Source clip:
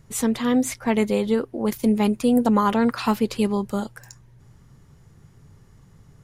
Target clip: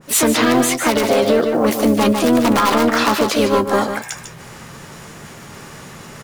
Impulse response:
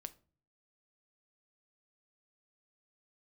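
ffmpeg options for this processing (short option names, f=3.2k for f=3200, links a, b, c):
-filter_complex "[0:a]asplit=2[a][b];[b]highpass=f=720:p=1,volume=18dB,asoftclip=type=tanh:threshold=-8dB[c];[a][c]amix=inputs=2:normalize=0,lowpass=f=7.1k:p=1,volume=-6dB,acrusher=bits=7:mode=log:mix=0:aa=0.000001,aeval=exprs='(mod(3.16*val(0)+1,2)-1)/3.16':c=same,asplit=4[d][e][f][g];[e]asetrate=22050,aresample=44100,atempo=2,volume=-11dB[h];[f]asetrate=58866,aresample=44100,atempo=0.749154,volume=-4dB[i];[g]asetrate=66075,aresample=44100,atempo=0.66742,volume=-17dB[j];[d][h][i][j]amix=inputs=4:normalize=0,asplit=2[k][l];[l]adelay=13,volume=-12dB[m];[k][m]amix=inputs=2:normalize=0,areverse,acompressor=mode=upward:threshold=-30dB:ratio=2.5,areverse,lowshelf=f=97:g=-11.5,asplit=2[n][o];[o]aecho=0:1:149:0.376[p];[n][p]amix=inputs=2:normalize=0,alimiter=level_in=9.5dB:limit=-1dB:release=50:level=0:latency=1,adynamicequalizer=threshold=0.0794:dfrequency=1600:dqfactor=0.7:tfrequency=1600:tqfactor=0.7:attack=5:release=100:ratio=0.375:range=2:mode=cutabove:tftype=highshelf,volume=-4.5dB"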